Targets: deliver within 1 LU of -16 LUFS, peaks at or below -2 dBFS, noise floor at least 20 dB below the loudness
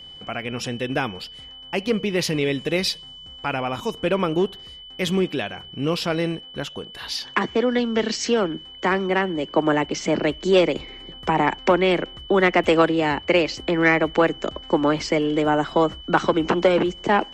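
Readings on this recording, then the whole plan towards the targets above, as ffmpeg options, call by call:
steady tone 3000 Hz; tone level -39 dBFS; loudness -22.0 LUFS; peak -5.5 dBFS; loudness target -16.0 LUFS
-> -af "bandreject=f=3k:w=30"
-af "volume=6dB,alimiter=limit=-2dB:level=0:latency=1"

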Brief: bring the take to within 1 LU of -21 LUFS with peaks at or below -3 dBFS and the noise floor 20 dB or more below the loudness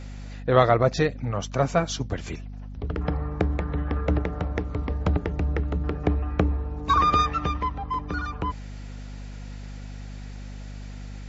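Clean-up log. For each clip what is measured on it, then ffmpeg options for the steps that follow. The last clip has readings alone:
hum 50 Hz; harmonics up to 250 Hz; hum level -35 dBFS; loudness -25.5 LUFS; peak -3.5 dBFS; loudness target -21.0 LUFS
-> -af "bandreject=f=50:t=h:w=4,bandreject=f=100:t=h:w=4,bandreject=f=150:t=h:w=4,bandreject=f=200:t=h:w=4,bandreject=f=250:t=h:w=4"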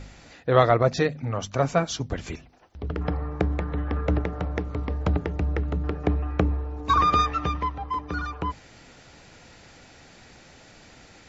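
hum none; loudness -26.0 LUFS; peak -4.0 dBFS; loudness target -21.0 LUFS
-> -af "volume=5dB,alimiter=limit=-3dB:level=0:latency=1"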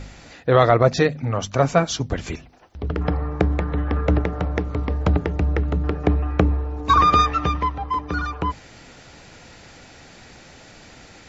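loudness -21.0 LUFS; peak -3.0 dBFS; noise floor -46 dBFS

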